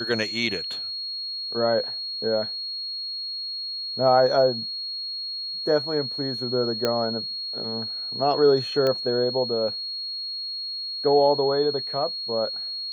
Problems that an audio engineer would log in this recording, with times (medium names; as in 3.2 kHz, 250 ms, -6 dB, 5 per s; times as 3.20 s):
whine 4.3 kHz -29 dBFS
6.85 s: pop -9 dBFS
8.87 s: pop -13 dBFS